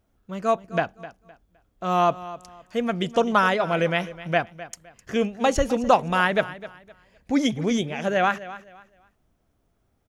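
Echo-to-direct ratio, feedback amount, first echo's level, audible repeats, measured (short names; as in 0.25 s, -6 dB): -15.5 dB, 27%, -16.0 dB, 2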